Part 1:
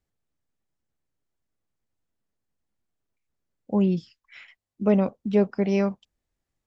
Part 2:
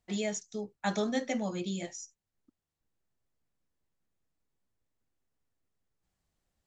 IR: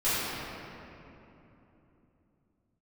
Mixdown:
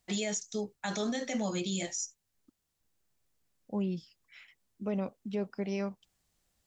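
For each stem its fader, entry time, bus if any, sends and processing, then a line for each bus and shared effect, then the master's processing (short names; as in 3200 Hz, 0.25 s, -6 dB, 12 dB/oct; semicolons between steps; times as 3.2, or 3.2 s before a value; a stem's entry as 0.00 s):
-11.0 dB, 0.00 s, no send, dry
+2.5 dB, 0.00 s, no send, dry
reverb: off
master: high shelf 2700 Hz +8 dB; limiter -24 dBFS, peak gain reduction 10.5 dB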